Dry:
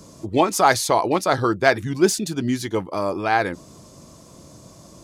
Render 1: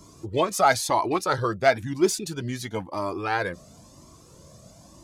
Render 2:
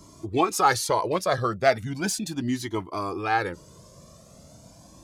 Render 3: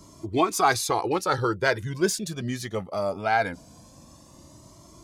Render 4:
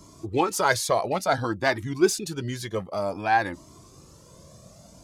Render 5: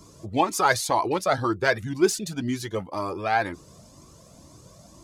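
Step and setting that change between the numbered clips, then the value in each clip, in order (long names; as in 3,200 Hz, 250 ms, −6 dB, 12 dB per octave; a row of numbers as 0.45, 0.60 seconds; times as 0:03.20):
flanger whose copies keep moving one way, speed: 0.99, 0.37, 0.21, 0.55, 2 Hertz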